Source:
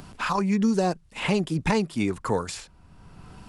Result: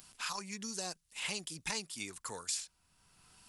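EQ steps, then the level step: pre-emphasis filter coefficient 0.97; dynamic bell 5.6 kHz, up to +3 dB, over -51 dBFS, Q 1.1; bass shelf 240 Hz +6 dB; 0.0 dB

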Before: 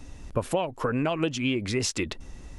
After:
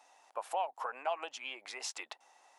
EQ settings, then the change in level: ladder high-pass 710 Hz, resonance 65%; 0.0 dB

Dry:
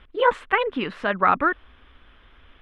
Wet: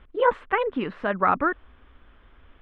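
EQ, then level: low-pass 1.3 kHz 6 dB/octave; 0.0 dB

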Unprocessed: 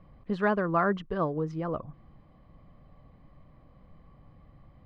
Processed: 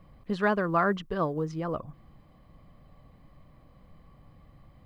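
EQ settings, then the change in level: treble shelf 3.8 kHz +11.5 dB; 0.0 dB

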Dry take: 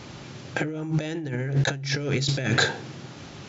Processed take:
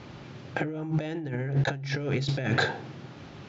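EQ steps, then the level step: treble shelf 4.8 kHz -6 dB; dynamic bell 770 Hz, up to +4 dB, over -45 dBFS, Q 2.4; distance through air 98 m; -2.5 dB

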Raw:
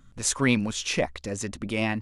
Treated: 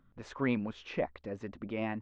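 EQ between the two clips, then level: distance through air 54 m; tape spacing loss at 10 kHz 42 dB; bass shelf 180 Hz -11.5 dB; -2.5 dB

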